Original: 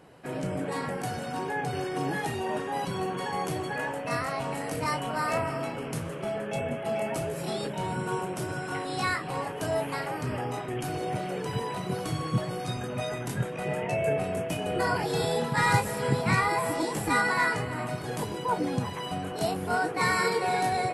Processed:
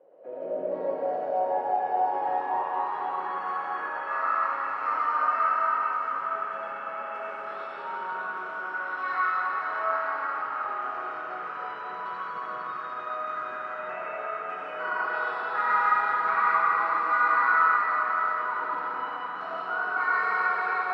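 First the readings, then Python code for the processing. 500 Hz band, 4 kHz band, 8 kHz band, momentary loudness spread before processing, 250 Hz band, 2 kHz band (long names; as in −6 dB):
−4.5 dB, −13.0 dB, below −30 dB, 8 LU, −15.5 dB, +3.0 dB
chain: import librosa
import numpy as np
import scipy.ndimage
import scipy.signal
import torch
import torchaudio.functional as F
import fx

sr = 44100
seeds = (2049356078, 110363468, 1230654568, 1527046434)

y = fx.bandpass_edges(x, sr, low_hz=230.0, high_hz=4100.0)
y = fx.filter_sweep_bandpass(y, sr, from_hz=540.0, to_hz=1300.0, start_s=0.53, end_s=3.31, q=7.5)
y = fx.rev_freeverb(y, sr, rt60_s=4.8, hf_ratio=0.95, predelay_ms=35, drr_db=-8.0)
y = F.gain(torch.from_numpy(y), 6.0).numpy()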